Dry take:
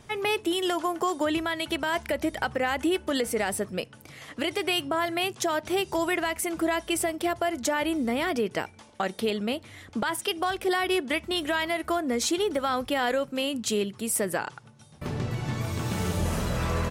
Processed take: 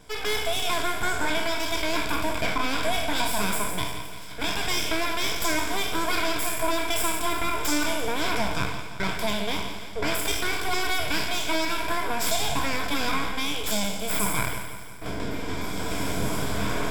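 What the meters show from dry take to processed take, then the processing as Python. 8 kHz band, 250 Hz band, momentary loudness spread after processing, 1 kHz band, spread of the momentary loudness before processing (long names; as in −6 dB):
+3.5 dB, −2.5 dB, 6 LU, +1.5 dB, 6 LU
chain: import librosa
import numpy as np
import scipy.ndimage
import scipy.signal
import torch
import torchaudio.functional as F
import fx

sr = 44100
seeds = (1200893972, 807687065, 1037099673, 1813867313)

p1 = fx.spec_trails(x, sr, decay_s=0.94)
p2 = np.abs(p1)
p3 = fx.ripple_eq(p2, sr, per_octave=1.7, db=9)
y = p3 + fx.echo_feedback(p3, sr, ms=172, feedback_pct=58, wet_db=-11.5, dry=0)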